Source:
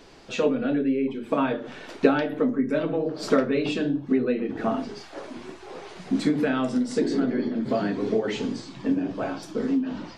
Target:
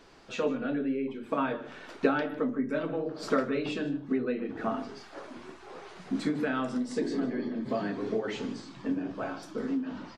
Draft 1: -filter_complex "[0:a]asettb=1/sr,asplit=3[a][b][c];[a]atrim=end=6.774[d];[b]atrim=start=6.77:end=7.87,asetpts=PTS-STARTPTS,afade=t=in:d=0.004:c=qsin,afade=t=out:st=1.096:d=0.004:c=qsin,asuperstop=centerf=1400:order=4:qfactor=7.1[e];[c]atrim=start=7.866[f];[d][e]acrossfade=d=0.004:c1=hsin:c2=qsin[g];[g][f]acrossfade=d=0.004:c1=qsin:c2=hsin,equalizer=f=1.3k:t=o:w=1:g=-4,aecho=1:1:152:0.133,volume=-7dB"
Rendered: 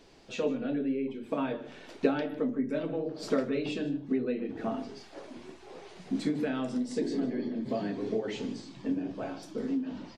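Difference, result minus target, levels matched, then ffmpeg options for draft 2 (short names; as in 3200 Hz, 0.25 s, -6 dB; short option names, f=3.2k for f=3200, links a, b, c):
1000 Hz band -4.5 dB
-filter_complex "[0:a]asettb=1/sr,asplit=3[a][b][c];[a]atrim=end=6.774[d];[b]atrim=start=6.77:end=7.87,asetpts=PTS-STARTPTS,afade=t=in:d=0.004:c=qsin,afade=t=out:st=1.096:d=0.004:c=qsin,asuperstop=centerf=1400:order=4:qfactor=7.1[e];[c]atrim=start=7.866[f];[d][e]acrossfade=d=0.004:c1=hsin:c2=qsin[g];[g][f]acrossfade=d=0.004:c1=qsin:c2=hsin,equalizer=f=1.3k:t=o:w=1:g=5,aecho=1:1:152:0.133,volume=-7dB"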